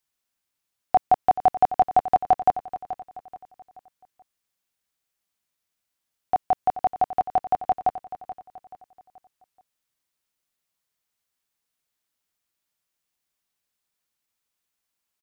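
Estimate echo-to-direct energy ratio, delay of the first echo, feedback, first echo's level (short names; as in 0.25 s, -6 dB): -13.0 dB, 0.43 s, 38%, -13.5 dB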